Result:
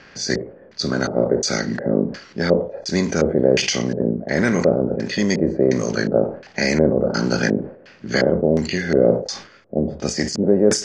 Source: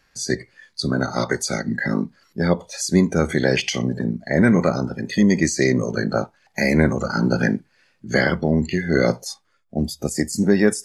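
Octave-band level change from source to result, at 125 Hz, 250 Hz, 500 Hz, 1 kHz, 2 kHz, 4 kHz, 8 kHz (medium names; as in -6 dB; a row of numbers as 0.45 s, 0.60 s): -2.0 dB, -0.5 dB, +4.5 dB, -1.5 dB, -1.5 dB, +3.5 dB, +1.0 dB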